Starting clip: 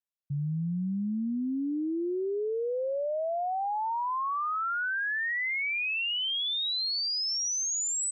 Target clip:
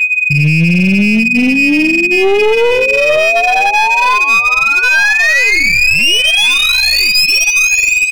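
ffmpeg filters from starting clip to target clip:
ffmpeg -i in.wav -af "aeval=exprs='val(0)+0.0141*sin(2*PI*2500*n/s)':channel_layout=same,areverse,acompressor=mode=upward:threshold=-55dB:ratio=2.5,areverse,lowpass=7300,bandreject=frequency=116.9:width_type=h:width=4,bandreject=frequency=233.8:width_type=h:width=4,bandreject=frequency=350.7:width_type=h:width=4,bandreject=frequency=467.6:width_type=h:width=4,bandreject=frequency=584.5:width_type=h:width=4,bandreject=frequency=701.4:width_type=h:width=4,bandreject=frequency=818.3:width_type=h:width=4,flanger=delay=9.6:depth=3.2:regen=10:speed=0.92:shape=sinusoidal,adynamicsmooth=sensitivity=7:basefreq=3000,superequalizer=6b=1.41:7b=2.51:10b=0.355:12b=2.51:14b=1.41,aecho=1:1:460|920|1380|1840:0.0841|0.0471|0.0264|0.0148,aeval=exprs='clip(val(0),-1,0.0251)':channel_layout=same,alimiter=level_in=25.5dB:limit=-1dB:release=50:level=0:latency=1,volume=-1dB" out.wav

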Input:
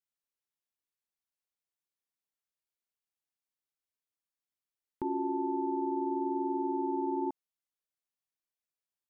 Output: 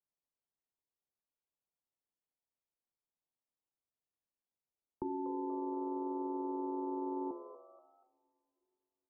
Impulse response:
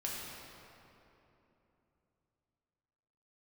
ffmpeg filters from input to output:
-filter_complex "[0:a]acrossover=split=280|660[link_01][link_02][link_03];[link_01]acompressor=threshold=-48dB:ratio=4[link_04];[link_02]acompressor=threshold=-39dB:ratio=4[link_05];[link_03]acompressor=threshold=-48dB:ratio=4[link_06];[link_04][link_05][link_06]amix=inputs=3:normalize=0,lowpass=frequency=1000:width=0.5412,lowpass=frequency=1000:width=1.3066,bandreject=frequency=87.4:width_type=h:width=4,bandreject=frequency=174.8:width_type=h:width=4,bandreject=frequency=262.2:width_type=h:width=4,bandreject=frequency=349.6:width_type=h:width=4,bandreject=frequency=437:width_type=h:width=4,bandreject=frequency=524.4:width_type=h:width=4,bandreject=frequency=611.8:width_type=h:width=4,bandreject=frequency=699.2:width_type=h:width=4,bandreject=frequency=786.6:width_type=h:width=4,bandreject=frequency=874:width_type=h:width=4,bandreject=frequency=961.4:width_type=h:width=4,bandreject=frequency=1048.8:width_type=h:width=4,bandreject=frequency=1136.2:width_type=h:width=4,bandreject=frequency=1223.6:width_type=h:width=4,bandreject=frequency=1311:width_type=h:width=4,bandreject=frequency=1398.4:width_type=h:width=4,bandreject=frequency=1485.8:width_type=h:width=4,bandreject=frequency=1573.2:width_type=h:width=4,bandreject=frequency=1660.6:width_type=h:width=4,bandreject=frequency=1748:width_type=h:width=4,bandreject=frequency=1835.4:width_type=h:width=4,bandreject=frequency=1922.8:width_type=h:width=4,bandreject=frequency=2010.2:width_type=h:width=4,bandreject=frequency=2097.6:width_type=h:width=4,bandreject=frequency=2185:width_type=h:width=4,bandreject=frequency=2272.4:width_type=h:width=4,bandreject=frequency=2359.8:width_type=h:width=4,bandreject=frequency=2447.2:width_type=h:width=4,bandreject=frequency=2534.6:width_type=h:width=4,bandreject=frequency=2622:width_type=h:width=4,bandreject=frequency=2709.4:width_type=h:width=4,bandreject=frequency=2796.8:width_type=h:width=4,asplit=4[link_07][link_08][link_09][link_10];[link_08]adelay=240,afreqshift=140,volume=-13.5dB[link_11];[link_09]adelay=480,afreqshift=280,volume=-22.4dB[link_12];[link_10]adelay=720,afreqshift=420,volume=-31.2dB[link_13];[link_07][link_11][link_12][link_13]amix=inputs=4:normalize=0,asplit=2[link_14][link_15];[1:a]atrim=start_sample=2205,lowshelf=frequency=280:gain=-9.5[link_16];[link_15][link_16]afir=irnorm=-1:irlink=0,volume=-24.5dB[link_17];[link_14][link_17]amix=inputs=2:normalize=0,volume=1dB"

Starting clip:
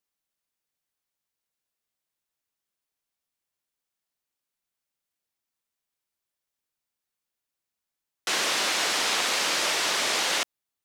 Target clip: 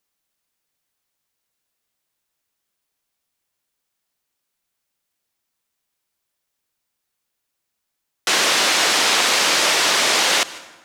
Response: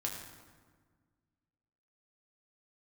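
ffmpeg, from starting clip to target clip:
-filter_complex "[0:a]asplit=2[link_01][link_02];[1:a]atrim=start_sample=2205,adelay=149[link_03];[link_02][link_03]afir=irnorm=-1:irlink=0,volume=-19dB[link_04];[link_01][link_04]amix=inputs=2:normalize=0,volume=8.5dB"

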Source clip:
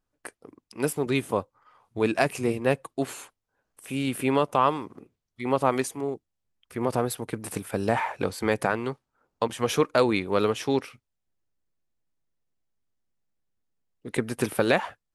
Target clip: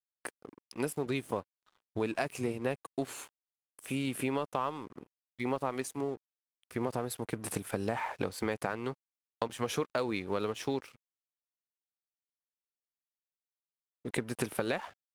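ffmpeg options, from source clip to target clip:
ffmpeg -i in.wav -af "acompressor=threshold=-30dB:ratio=4,aeval=exprs='sgn(val(0))*max(abs(val(0))-0.002,0)':channel_layout=same" out.wav

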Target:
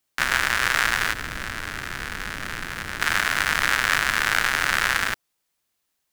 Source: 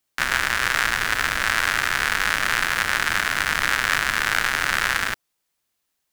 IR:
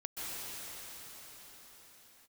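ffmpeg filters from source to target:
-filter_complex "[0:a]asettb=1/sr,asplit=3[link_01][link_02][link_03];[link_01]atrim=end=1.114[link_04];[link_02]atrim=start=1.11:end=3.01,asetpts=PTS-STARTPTS,afade=type=in:duration=0.004:curve=qsin,afade=type=out:start_time=1.896:duration=0.004:curve=qsin,acrossover=split=400[link_05][link_06];[link_06]acompressor=threshold=-28dB:ratio=5[link_07];[link_05][link_07]amix=inputs=2:normalize=0[link_08];[link_03]atrim=start=3.006[link_09];[link_04][link_08]acrossfade=duration=0.004:curve1=hsin:curve2=qsin[link_10];[link_10][link_09]acrossfade=duration=0.004:curve1=qsin:curve2=hsin"

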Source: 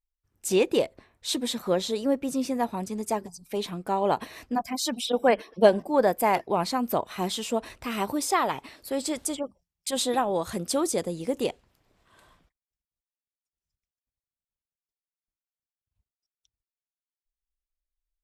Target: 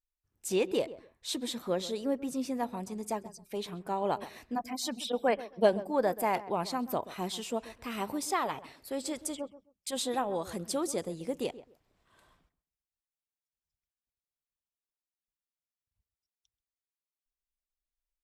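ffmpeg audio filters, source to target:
ffmpeg -i in.wav -filter_complex "[0:a]asplit=2[link_01][link_02];[link_02]adelay=132,lowpass=frequency=1300:poles=1,volume=-15dB,asplit=2[link_03][link_04];[link_04]adelay=132,lowpass=frequency=1300:poles=1,volume=0.22[link_05];[link_01][link_03][link_05]amix=inputs=3:normalize=0,volume=-6.5dB" out.wav

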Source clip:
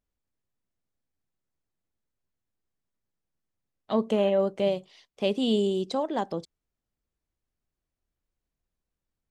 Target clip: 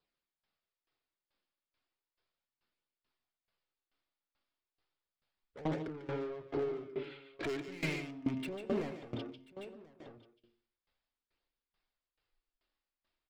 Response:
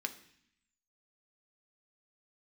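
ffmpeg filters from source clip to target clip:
-filter_complex "[0:a]acompressor=threshold=-38dB:ratio=2.5,bandreject=frequency=80.69:width_type=h:width=4,bandreject=frequency=161.38:width_type=h:width=4,bandreject=frequency=242.07:width_type=h:width=4,bandreject=frequency=322.76:width_type=h:width=4,asubboost=boost=2.5:cutoff=110,afwtdn=0.00316,aresample=16000,asoftclip=type=tanh:threshold=-39.5dB,aresample=44100,asetrate=30870,aresample=44100,asplit=2[link_01][link_02];[link_02]highpass=frequency=720:poles=1,volume=23dB,asoftclip=type=tanh:threshold=-36dB[link_03];[link_01][link_03]amix=inputs=2:normalize=0,lowpass=frequency=5800:poles=1,volume=-6dB,flanger=delay=0.2:depth=3.6:regen=-35:speed=0.35:shape=triangular,aecho=1:1:1036:0.211,asplit=2[link_04][link_05];[1:a]atrim=start_sample=2205,asetrate=61740,aresample=44100,adelay=146[link_06];[link_05][link_06]afir=irnorm=-1:irlink=0,volume=0dB[link_07];[link_04][link_07]amix=inputs=2:normalize=0,aeval=exprs='val(0)*pow(10,-19*if(lt(mod(2.3*n/s,1),2*abs(2.3)/1000),1-mod(2.3*n/s,1)/(2*abs(2.3)/1000),(mod(2.3*n/s,1)-2*abs(2.3)/1000)/(1-2*abs(2.3)/1000))/20)':channel_layout=same,volume=13dB"

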